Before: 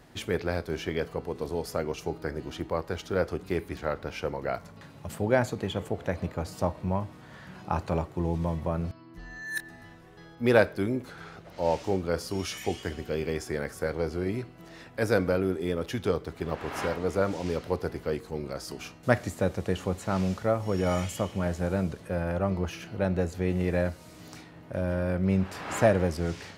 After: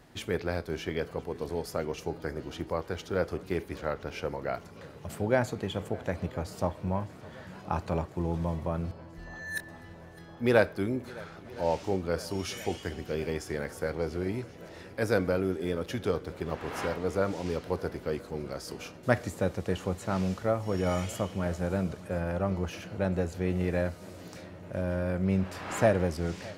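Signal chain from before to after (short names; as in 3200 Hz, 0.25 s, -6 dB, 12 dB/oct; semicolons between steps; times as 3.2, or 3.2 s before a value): swung echo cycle 1.016 s, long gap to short 1.5:1, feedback 72%, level -22 dB; gain -2 dB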